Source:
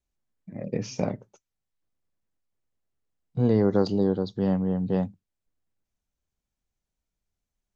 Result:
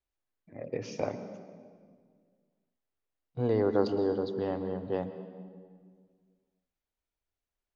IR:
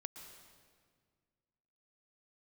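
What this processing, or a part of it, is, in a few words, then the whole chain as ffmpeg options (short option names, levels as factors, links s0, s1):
filtered reverb send: -filter_complex "[0:a]asplit=2[s0][s1];[s1]highpass=f=190:w=0.5412,highpass=f=190:w=1.3066,lowpass=4400[s2];[1:a]atrim=start_sample=2205[s3];[s2][s3]afir=irnorm=-1:irlink=0,volume=2[s4];[s0][s4]amix=inputs=2:normalize=0,volume=0.376"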